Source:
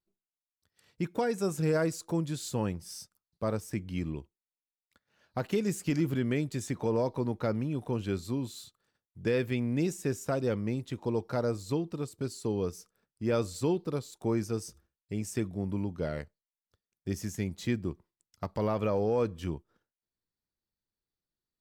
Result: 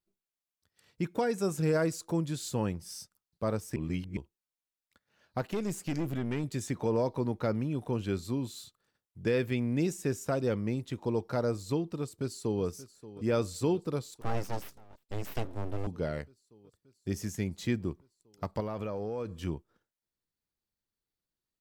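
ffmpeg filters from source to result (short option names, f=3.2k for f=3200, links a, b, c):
-filter_complex "[0:a]asettb=1/sr,asplit=3[a][b][c];[a]atrim=end=5.414[d];[b]atrim=start=5.41:end=6.44,asetpts=PTS-STARTPTS,afade=t=in:d=0.004:c=qsin,afade=t=out:st=1.026:d=0.004:c=qsin,aeval=exprs='(tanh(22.4*val(0)+0.5)-tanh(0.5))/22.4':c=same[e];[c]atrim=start=6.436[f];[d][e]acrossfade=d=0.004:c1=hsin:c2=qsin[g];[g][f]acrossfade=d=0.004:c1=qsin:c2=hsin,asplit=2[h][i];[i]afade=t=in:st=12:d=0.01,afade=t=out:st=12.63:d=0.01,aecho=0:1:580|1160|1740|2320|2900|3480|4060|4640|5220|5800|6380|6960:0.149624|0.119699|0.0957591|0.0766073|0.0612858|0.0490286|0.0392229|0.0313783|0.0251027|0.0200821|0.0160657|0.0128526[j];[h][j]amix=inputs=2:normalize=0,asettb=1/sr,asplit=3[k][l][m];[k]atrim=end=14.214[n];[l]atrim=start=14.21:end=15.87,asetpts=PTS-STARTPTS,afade=t=in:d=0.004:c=qsin,afade=t=out:st=1.656:d=0.004:c=qsin,aeval=exprs='abs(val(0))':c=same[o];[m]atrim=start=15.866[p];[n][o]acrossfade=d=0.004:c1=hsin:c2=qsin[q];[q][p]acrossfade=d=0.004:c1=qsin:c2=hsin,asettb=1/sr,asplit=3[r][s][t];[r]atrim=end=18.604[u];[s]atrim=start=18.6:end=19.36,asetpts=PTS-STARTPTS,afade=t=in:d=0.004:c=qsin,afade=t=out:st=0.756:d=0.004:c=qsin,acompressor=threshold=-32dB:ratio=6:attack=3.2:release=140:knee=1:detection=peak[v];[t]atrim=start=19.356[w];[u][v]acrossfade=d=0.004:c1=hsin:c2=qsin[x];[x][w]acrossfade=d=0.004:c1=qsin:c2=hsin,asplit=3[y][z][aa];[y]atrim=end=3.762[ab];[z]atrim=start=3.758:end=4.172,asetpts=PTS-STARTPTS,areverse[ac];[aa]atrim=start=4.168[ad];[ab][ac]acrossfade=d=0.004:c1=hsin:c2=hsin[ae];[ae][ad]acrossfade=d=0.004:c1=hsin:c2=hsin"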